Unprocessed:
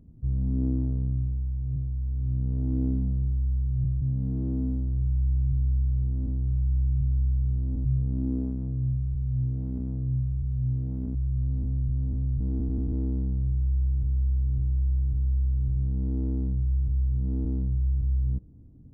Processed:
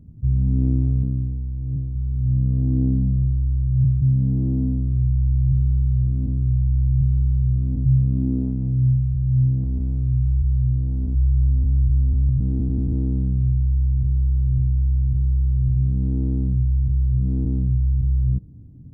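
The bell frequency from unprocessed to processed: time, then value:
bell +10.5 dB 2 oct
110 Hz
from 1.03 s 250 Hz
from 1.95 s 140 Hz
from 9.64 s 66 Hz
from 12.29 s 130 Hz

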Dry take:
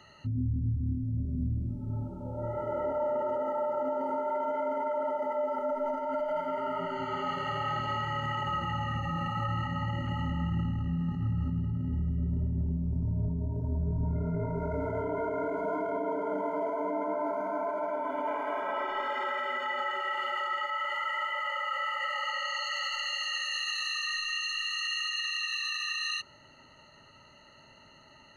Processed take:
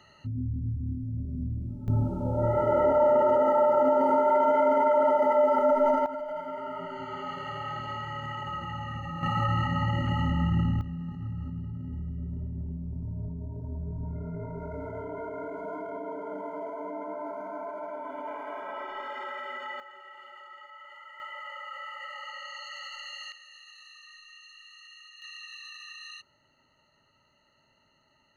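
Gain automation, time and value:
-1.5 dB
from 1.88 s +9 dB
from 6.06 s -3.5 dB
from 9.23 s +5 dB
from 10.81 s -5 dB
from 19.8 s -16 dB
from 21.2 s -8 dB
from 23.32 s -18.5 dB
from 25.22 s -11.5 dB

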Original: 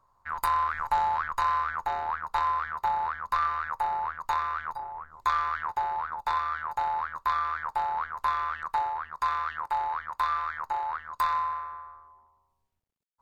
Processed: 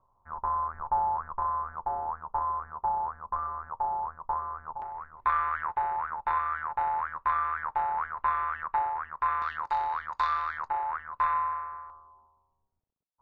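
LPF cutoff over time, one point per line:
LPF 24 dB/oct
1000 Hz
from 4.82 s 2400 Hz
from 9.42 s 6300 Hz
from 10.68 s 2500 Hz
from 11.9 s 1200 Hz

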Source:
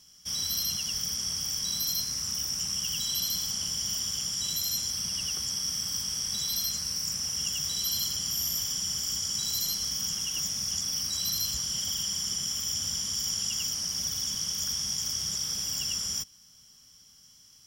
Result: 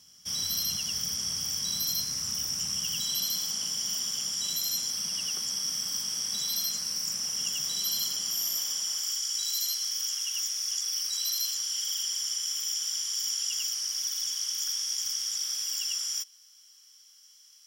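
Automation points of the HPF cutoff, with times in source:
2.74 s 80 Hz
3.34 s 210 Hz
7.91 s 210 Hz
8.86 s 490 Hz
9.21 s 1400 Hz

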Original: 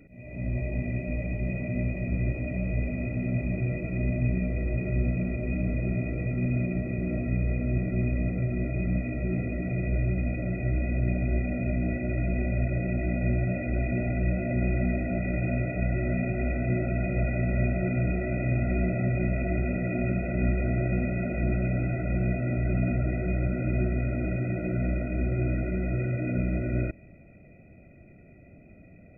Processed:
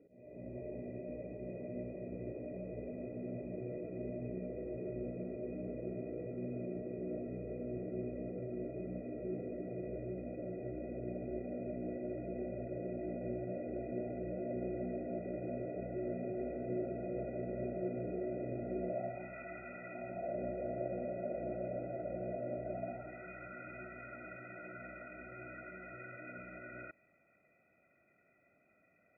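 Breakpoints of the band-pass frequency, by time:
band-pass, Q 3.1
18.8 s 450 Hz
19.35 s 1200 Hz
19.86 s 1200 Hz
20.39 s 560 Hz
22.63 s 560 Hz
23.28 s 1300 Hz

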